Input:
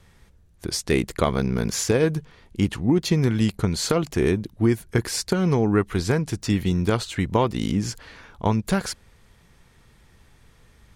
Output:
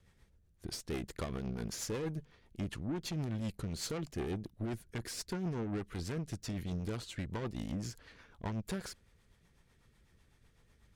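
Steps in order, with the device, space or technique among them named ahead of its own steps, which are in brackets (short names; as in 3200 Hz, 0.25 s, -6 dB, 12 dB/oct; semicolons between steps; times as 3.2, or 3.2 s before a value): overdriven rotary cabinet (tube stage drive 24 dB, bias 0.55; rotary speaker horn 8 Hz); gain -8 dB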